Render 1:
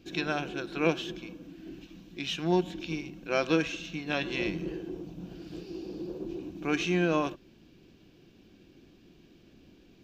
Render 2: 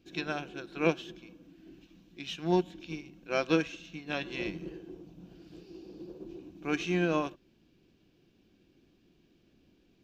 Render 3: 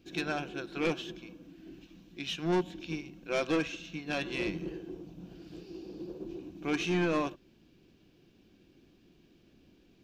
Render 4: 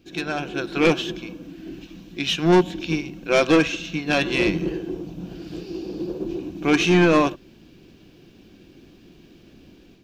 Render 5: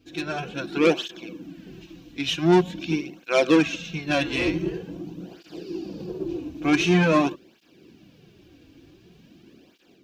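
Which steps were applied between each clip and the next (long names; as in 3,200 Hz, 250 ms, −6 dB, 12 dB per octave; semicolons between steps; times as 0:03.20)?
expander for the loud parts 1.5 to 1, over −39 dBFS
soft clipping −27 dBFS, distortion −8 dB; level +3.5 dB
automatic gain control gain up to 8 dB; level +5 dB
through-zero flanger with one copy inverted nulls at 0.46 Hz, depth 5.6 ms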